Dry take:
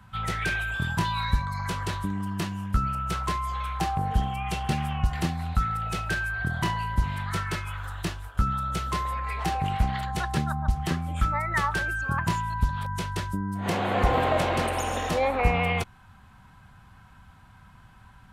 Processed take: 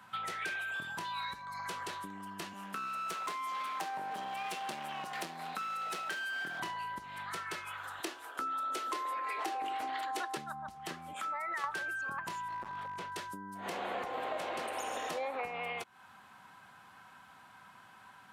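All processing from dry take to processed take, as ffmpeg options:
-filter_complex "[0:a]asettb=1/sr,asplit=3[s0][s1][s2];[s0]atrim=end=2.534[s3];[s1]atrim=start=2.53:end=6.6,asetpts=PTS-STARTPTS,afade=t=in:d=0.004:c=qsin,afade=t=out:st=4.066:d=0.004:c=qsin,highpass=f=160:w=0.5412,highpass=f=160:w=1.3066,aeval=exprs='clip(val(0),-1,0.015)':c=same[s4];[s2]atrim=start=6.596[s5];[s3][s4]acrossfade=d=0.004:c1=hsin:c2=qsin[s6];[s6][s5]acrossfade=d=0.004:c1=qsin:c2=hsin,asettb=1/sr,asplit=3[s7][s8][s9];[s7]atrim=end=8.004[s10];[s8]atrim=start=8:end=10.37,asetpts=PTS-STARTPTS,afade=t=in:d=0.004:c=qsin,afade=t=out:st=2.366:d=0.004:c=qsin,highpass=79,lowshelf=f=210:t=q:w=3:g=-11,bandreject=f=200:w=5.7[s11];[s9]atrim=start=10.366[s12];[s10][s11]acrossfade=d=0.004:c1=hsin:c2=qsin[s13];[s13][s12]acrossfade=d=0.004:c1=qsin:c2=hsin,asettb=1/sr,asplit=3[s14][s15][s16];[s14]atrim=end=11.134[s17];[s15]atrim=start=11.13:end=11.64,asetpts=PTS-STARTPTS,afade=t=in:d=0.004:c=qsin,afade=t=out:st=0.506:d=0.004:c=qsin,highpass=320,acompressor=threshold=0.0224:ratio=4:attack=3.2:release=140:knee=1:detection=peak[s18];[s16]atrim=start=11.636[s19];[s17][s18]acrossfade=d=0.004:c1=hsin:c2=qsin[s20];[s20][s19]acrossfade=d=0.004:c1=qsin:c2=hsin,asettb=1/sr,asplit=3[s21][s22][s23];[s21]atrim=end=12.484[s24];[s22]atrim=start=12.48:end=13.12,asetpts=PTS-STARTPTS,afade=t=in:d=0.004:c=qsin,afade=t=out:st=0.636:d=0.004:c=qsin,lowpass=f=1800:p=1,asoftclip=type=hard:threshold=0.0473[s25];[s23]atrim=start=13.116[s26];[s24][s25]acrossfade=d=0.004:c1=hsin:c2=qsin[s27];[s27][s26]acrossfade=d=0.004:c1=qsin:c2=hsin,acompressor=threshold=0.0178:ratio=6,highpass=360,volume=1.12"

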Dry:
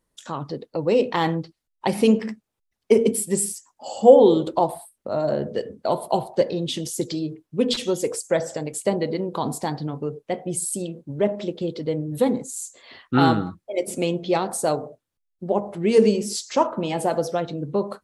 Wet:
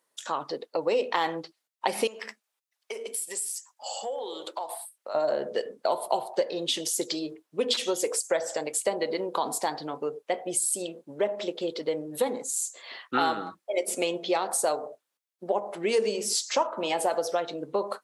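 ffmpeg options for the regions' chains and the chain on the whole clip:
-filter_complex "[0:a]asettb=1/sr,asplit=3[s0][s1][s2];[s0]atrim=end=2.074[s3];[s1]atrim=start=2.07:end=5.15,asetpts=PTS-STARTPTS,afade=t=in:d=0.004:c=qsin,afade=t=out:st=3.076:d=0.004:c=qsin,highpass=f=1200:p=1,acompressor=threshold=0.0251:ratio=5:attack=3.2:release=140:knee=1:detection=peak[s4];[s2]atrim=start=5.146[s5];[s3][s4]acrossfade=d=0.004:c1=hsin:c2=qsin[s6];[s6][s5]acrossfade=d=0.004:c1=qsin:c2=hsin,highpass=530,acompressor=threshold=0.0447:ratio=3,volume=1.5"

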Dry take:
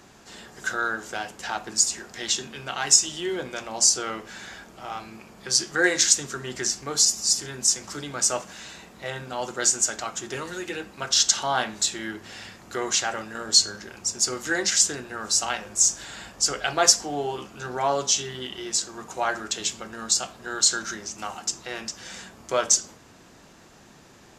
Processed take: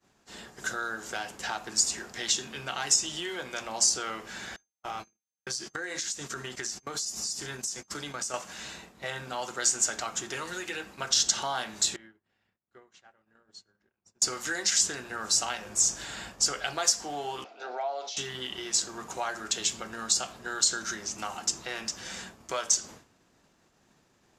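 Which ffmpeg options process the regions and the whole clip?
-filter_complex "[0:a]asettb=1/sr,asplit=3[s0][s1][s2];[s0]atrim=end=4.564[s3];[s1]atrim=start=4.56:end=8.34,asetpts=PTS-STARTPTS,afade=t=in:d=0.004:c=qsin,afade=t=out:st=3.776:d=0.004:c=qsin,agate=range=0.0282:threshold=0.0112:ratio=16:release=100:detection=peak,acompressor=threshold=0.0355:ratio=16:attack=3.2:release=140:knee=1:detection=peak,aeval=exprs='val(0)+0.000794*sin(2*PI*6300*n/s)':c=same[s4];[s2]atrim=start=8.336[s5];[s3][s4]acrossfade=d=0.004:c1=hsin:c2=qsin[s6];[s6][s5]acrossfade=d=0.004:c1=qsin:c2=hsin,asettb=1/sr,asplit=3[s7][s8][s9];[s7]atrim=end=11.964[s10];[s8]atrim=start=11.96:end=14.22,asetpts=PTS-STARTPTS,afade=t=in:d=0.004:c=qsin,afade=t=out:st=2.256:d=0.004:c=qsin,bass=f=250:g=2,treble=f=4000:g=-14,acompressor=threshold=0.01:ratio=6:attack=3.2:release=140:knee=1:detection=peak,agate=range=0.0224:threshold=0.0126:ratio=3:release=100:detection=peak[s11];[s9]atrim=start=14.216[s12];[s10][s11]acrossfade=d=0.004:c1=hsin:c2=qsin[s13];[s13][s12]acrossfade=d=0.004:c1=qsin:c2=hsin,asettb=1/sr,asplit=3[s14][s15][s16];[s14]atrim=end=17.444[s17];[s15]atrim=start=17.44:end=18.17,asetpts=PTS-STARTPTS,afade=t=in:d=0.004:c=qsin,afade=t=out:st=0.726:d=0.004:c=qsin,acompressor=threshold=0.0447:ratio=5:attack=3.2:release=140:knee=1:detection=peak,highpass=f=360:w=0.5412,highpass=f=360:w=1.3066,equalizer=f=370:t=q:w=4:g=-4,equalizer=f=690:t=q:w=4:g=10,equalizer=f=1100:t=q:w=4:g=-9,equalizer=f=1700:t=q:w=4:g=-7,equalizer=f=3000:t=q:w=4:g=-6,lowpass=f=4500:w=0.5412,lowpass=f=4500:w=1.3066[s18];[s16]atrim=start=18.166[s19];[s17][s18]acrossfade=d=0.004:c1=hsin:c2=qsin[s20];[s20][s19]acrossfade=d=0.004:c1=qsin:c2=hsin,agate=range=0.0224:threshold=0.00891:ratio=3:detection=peak,acrossover=split=710|4200[s21][s22][s23];[s21]acompressor=threshold=0.00891:ratio=4[s24];[s22]acompressor=threshold=0.0251:ratio=4[s25];[s23]acompressor=threshold=0.0708:ratio=4[s26];[s24][s25][s26]amix=inputs=3:normalize=0"

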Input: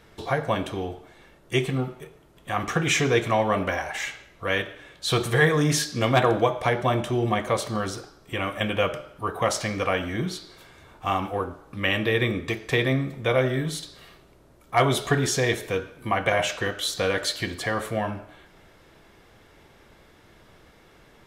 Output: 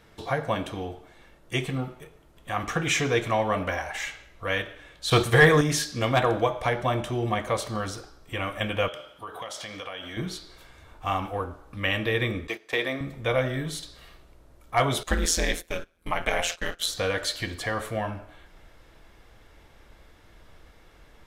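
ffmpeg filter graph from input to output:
-filter_complex "[0:a]asettb=1/sr,asplit=3[s0][s1][s2];[s0]atrim=end=5.104[s3];[s1]atrim=start=5.1:end=5.61,asetpts=PTS-STARTPTS,afade=t=in:d=0.004:c=qsin,afade=t=out:st=0.506:d=0.004:c=qsin,acontrast=72,agate=range=0.0224:threshold=0.112:ratio=3:release=100:detection=peak[s4];[s2]atrim=start=5.606[s5];[s3][s4]acrossfade=d=0.004:c1=hsin:c2=qsin[s6];[s6][s5]acrossfade=d=0.004:c1=qsin:c2=hsin,asettb=1/sr,asplit=3[s7][s8][s9];[s7]atrim=end=8.884[s10];[s8]atrim=start=8.88:end=10.17,asetpts=PTS-STARTPTS,afade=t=in:d=0.004:c=qsin,afade=t=out:st=1.286:d=0.004:c=qsin,highpass=f=320:p=1,equalizer=f=3300:t=o:w=0.23:g=13,acompressor=threshold=0.0251:ratio=4:attack=3.2:release=140:knee=1:detection=peak[s11];[s9]atrim=start=10.166[s12];[s10][s11]acrossfade=d=0.004:c1=hsin:c2=qsin[s13];[s13][s12]acrossfade=d=0.004:c1=qsin:c2=hsin,asettb=1/sr,asplit=3[s14][s15][s16];[s14]atrim=end=12.474[s17];[s15]atrim=start=12.47:end=13.01,asetpts=PTS-STARTPTS,afade=t=in:d=0.004:c=qsin,afade=t=out:st=0.536:d=0.004:c=qsin,highpass=320,agate=range=0.316:threshold=0.0178:ratio=16:release=100:detection=peak[s18];[s16]atrim=start=13.006[s19];[s17][s18]acrossfade=d=0.004:c1=hsin:c2=qsin[s20];[s20][s19]acrossfade=d=0.004:c1=qsin:c2=hsin,asettb=1/sr,asplit=3[s21][s22][s23];[s21]atrim=end=15.034[s24];[s22]atrim=start=15.03:end=16.86,asetpts=PTS-STARTPTS,afade=t=in:d=0.004:c=qsin,afade=t=out:st=1.826:d=0.004:c=qsin,agate=range=0.141:threshold=0.0178:ratio=16:release=100:detection=peak,highshelf=f=3000:g=8.5,aeval=exprs='val(0)*sin(2*PI*84*n/s)':c=same[s25];[s23]atrim=start=16.856[s26];[s24][s25]acrossfade=d=0.004:c1=hsin:c2=qsin[s27];[s27][s26]acrossfade=d=0.004:c1=qsin:c2=hsin,bandreject=f=390:w=12,asubboost=boost=3.5:cutoff=71,volume=0.794"

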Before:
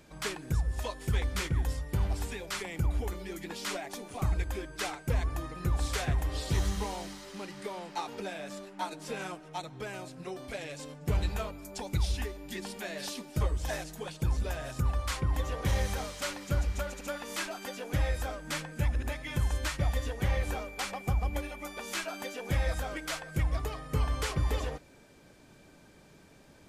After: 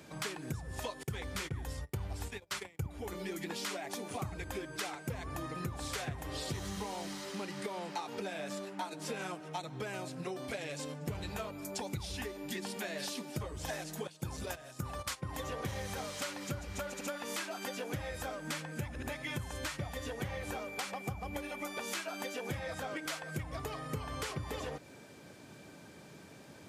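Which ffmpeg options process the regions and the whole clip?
-filter_complex "[0:a]asettb=1/sr,asplit=3[s0][s1][s2];[s0]atrim=end=1.034[s3];[s1]atrim=start=1.03:end=2.86,asetpts=PTS-STARTPTS,afade=t=in:d=0.004:c=qsin,afade=t=out:st=1.826:d=0.004:c=qsin,agate=range=0.0224:threshold=0.0126:ratio=16:release=100:detection=peak,asubboost=boost=9:cutoff=88[s4];[s2]atrim=start=2.856[s5];[s3][s4]acrossfade=d=0.004:c1=hsin:c2=qsin[s6];[s6][s5]acrossfade=d=0.004:c1=qsin:c2=hsin,asettb=1/sr,asplit=3[s7][s8][s9];[s7]atrim=end=14.074[s10];[s8]atrim=start=14.07:end=15.44,asetpts=PTS-STARTPTS,afade=t=in:d=0.004:c=qsin,afade=t=out:st=1.366:d=0.004:c=qsin,agate=range=0.2:threshold=0.02:ratio=16:release=100:detection=peak,bass=f=250:g=-3,treble=f=4000:g=4[s11];[s9]atrim=start=15.436[s12];[s10][s11]acrossfade=d=0.004:c1=hsin:c2=qsin[s13];[s13][s12]acrossfade=d=0.004:c1=qsin:c2=hsin,asettb=1/sr,asplit=3[s14][s15][s16];[s14]atrim=end=22.594[s17];[s15]atrim=start=22.59:end=23.05,asetpts=PTS-STARTPTS,afade=t=in:d=0.004:c=qsin,afade=t=out:st=0.456:d=0.004:c=qsin,highpass=f=82:w=0.5412,highpass=f=82:w=1.3066,highshelf=f=8300:g=-7[s18];[s16]atrim=start=23.046[s19];[s17][s18]acrossfade=d=0.004:c1=hsin:c2=qsin[s20];[s20][s19]acrossfade=d=0.004:c1=qsin:c2=hsin,highpass=f=86:w=0.5412,highpass=f=86:w=1.3066,acompressor=threshold=0.01:ratio=6,volume=1.58"

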